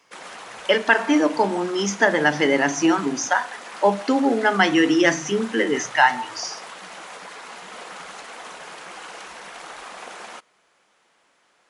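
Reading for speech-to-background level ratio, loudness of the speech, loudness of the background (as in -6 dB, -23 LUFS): 17.5 dB, -20.0 LUFS, -37.5 LUFS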